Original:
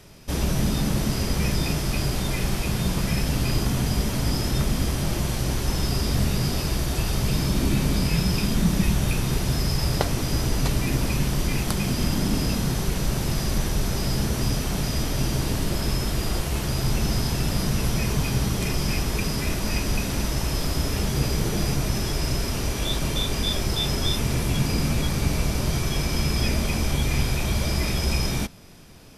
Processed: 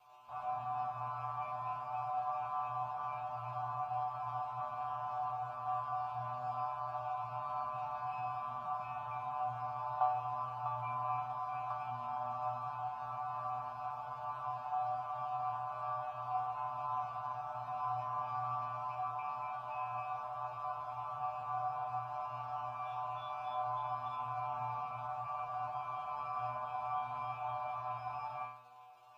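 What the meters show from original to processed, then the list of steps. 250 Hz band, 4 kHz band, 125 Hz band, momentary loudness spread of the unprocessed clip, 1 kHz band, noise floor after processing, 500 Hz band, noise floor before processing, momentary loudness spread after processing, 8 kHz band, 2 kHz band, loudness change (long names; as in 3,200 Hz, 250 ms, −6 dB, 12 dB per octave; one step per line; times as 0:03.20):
below −35 dB, below −30 dB, −28.0 dB, 3 LU, +1.0 dB, −45 dBFS, −16.0 dB, −28 dBFS, 4 LU, below −40 dB, −20.0 dB, −15.0 dB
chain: drawn EQ curve 150 Hz 0 dB, 410 Hz −29 dB, 670 Hz 0 dB, 980 Hz +13 dB, 2,300 Hz −12 dB, 12,000 Hz −25 dB
surface crackle 450 per second −36 dBFS
formant filter a
stiff-string resonator 120 Hz, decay 0.79 s, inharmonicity 0.002
level +15 dB
MP2 96 kbit/s 48,000 Hz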